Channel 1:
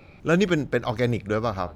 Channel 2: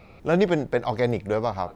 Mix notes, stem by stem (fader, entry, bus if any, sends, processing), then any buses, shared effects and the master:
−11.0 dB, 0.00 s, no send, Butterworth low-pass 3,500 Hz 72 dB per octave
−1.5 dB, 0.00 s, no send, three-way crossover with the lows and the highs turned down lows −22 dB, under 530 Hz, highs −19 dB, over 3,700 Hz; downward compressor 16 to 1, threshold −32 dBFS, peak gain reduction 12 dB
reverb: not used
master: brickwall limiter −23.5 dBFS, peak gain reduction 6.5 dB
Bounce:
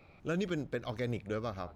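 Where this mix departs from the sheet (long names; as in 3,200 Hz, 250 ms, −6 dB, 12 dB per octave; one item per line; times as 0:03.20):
stem 1: missing Butterworth low-pass 3,500 Hz 72 dB per octave
stem 2 −1.5 dB → −11.5 dB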